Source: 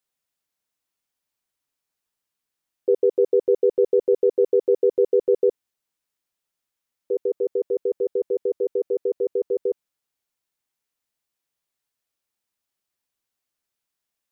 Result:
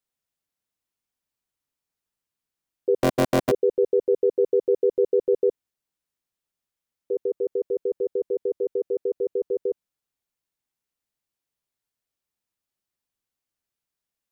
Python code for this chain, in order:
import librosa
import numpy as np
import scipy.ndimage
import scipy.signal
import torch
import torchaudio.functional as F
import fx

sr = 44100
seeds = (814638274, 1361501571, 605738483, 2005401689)

y = fx.cycle_switch(x, sr, every=3, mode='inverted', at=(3.0, 3.5), fade=0.02)
y = fx.low_shelf(y, sr, hz=330.0, db=6.5)
y = F.gain(torch.from_numpy(y), -4.5).numpy()